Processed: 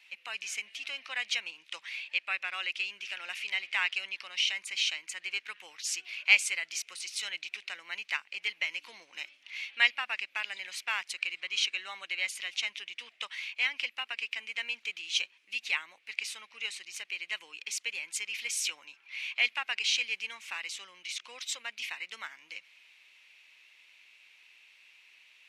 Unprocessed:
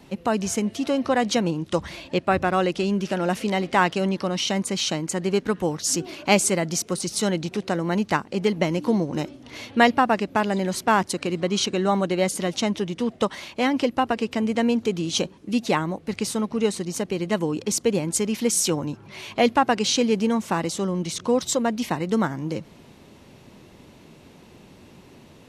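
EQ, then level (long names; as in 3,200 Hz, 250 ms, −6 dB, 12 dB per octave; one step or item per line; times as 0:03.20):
high-pass with resonance 2,400 Hz, resonance Q 4.1
high-shelf EQ 5,500 Hz −8.5 dB
−6.0 dB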